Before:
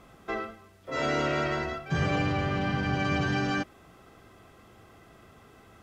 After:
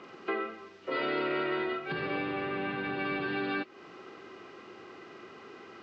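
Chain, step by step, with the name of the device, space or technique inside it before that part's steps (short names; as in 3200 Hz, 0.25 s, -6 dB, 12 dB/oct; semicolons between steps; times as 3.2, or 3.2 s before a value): hearing aid with frequency lowering (nonlinear frequency compression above 2200 Hz 1.5:1; compressor 3:1, threshold -38 dBFS, peak gain reduction 11 dB; speaker cabinet 280–5500 Hz, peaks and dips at 370 Hz +7 dB, 670 Hz -7 dB, 2700 Hz +3 dB); gain +6.5 dB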